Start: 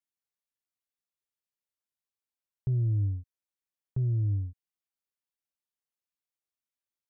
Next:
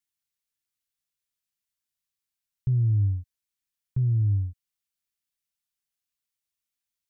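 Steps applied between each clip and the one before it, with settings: peaking EQ 550 Hz -14 dB 2.2 oct; trim +6.5 dB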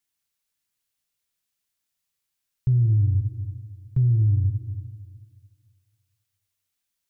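Schroeder reverb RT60 1.9 s, combs from 33 ms, DRR 5.5 dB; peak limiter -20.5 dBFS, peak gain reduction 5.5 dB; trim +5.5 dB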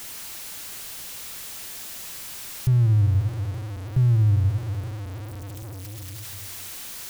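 jump at every zero crossing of -30.5 dBFS

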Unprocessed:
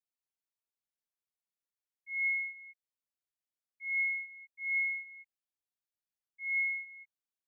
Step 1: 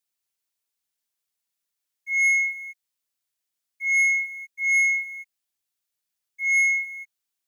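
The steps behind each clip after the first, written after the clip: waveshaping leveller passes 1; treble shelf 2 kHz +9 dB; trim +5.5 dB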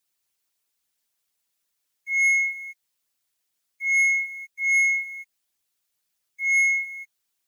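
harmonic-percussive split percussive +9 dB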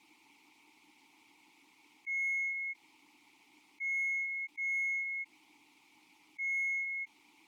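vowel filter u; in parallel at -5 dB: saturation -35 dBFS, distortion -11 dB; on the sum: level flattener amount 70%; trim -6 dB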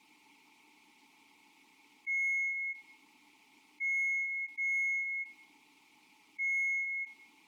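simulated room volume 3900 m³, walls furnished, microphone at 1.5 m

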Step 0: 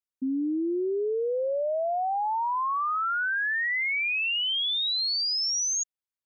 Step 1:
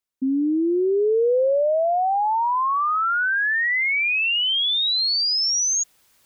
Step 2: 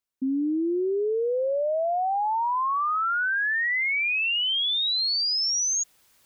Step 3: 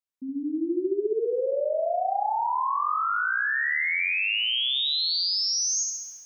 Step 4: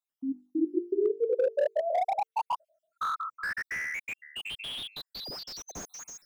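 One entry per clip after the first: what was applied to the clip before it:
dynamic bell 490 Hz, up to +3 dB, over -37 dBFS, Q 1.9; reverse; upward compressor, threshold -44 dBFS; reverse; trim +6 dB
peak limiter -20.5 dBFS, peak gain reduction 5 dB; trim -1.5 dB
level rider gain up to 5.5 dB; on a send: flutter echo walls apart 11.6 m, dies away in 1.2 s; on the sum: trim -9 dB
random holes in the spectrogram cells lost 67%; hum notches 50/100/150/200/250/300/350/400/450 Hz; slew-rate limiter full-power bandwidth 37 Hz; trim +2.5 dB

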